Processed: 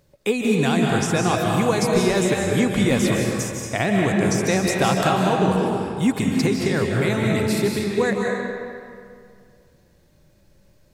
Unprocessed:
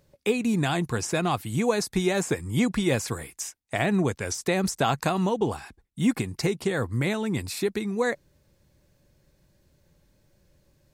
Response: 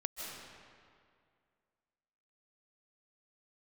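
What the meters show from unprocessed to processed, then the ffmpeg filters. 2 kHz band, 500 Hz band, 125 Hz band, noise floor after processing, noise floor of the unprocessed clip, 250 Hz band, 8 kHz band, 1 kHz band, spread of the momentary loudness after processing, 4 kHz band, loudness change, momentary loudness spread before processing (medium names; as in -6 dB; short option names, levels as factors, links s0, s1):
+6.0 dB, +6.5 dB, +6.0 dB, -57 dBFS, -67 dBFS, +6.5 dB, +5.0 dB, +6.5 dB, 6 LU, +5.5 dB, +6.0 dB, 5 LU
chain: -filter_complex "[1:a]atrim=start_sample=2205[s0];[0:a][s0]afir=irnorm=-1:irlink=0,volume=1.78"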